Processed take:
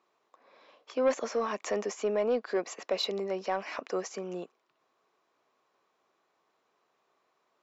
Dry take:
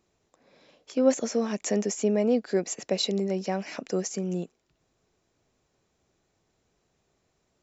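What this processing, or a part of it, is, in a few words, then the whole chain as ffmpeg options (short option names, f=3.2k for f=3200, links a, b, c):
intercom: -af "highpass=420,lowpass=4k,equalizer=f=1.1k:t=o:w=0.52:g=10,asoftclip=type=tanh:threshold=-18.5dB"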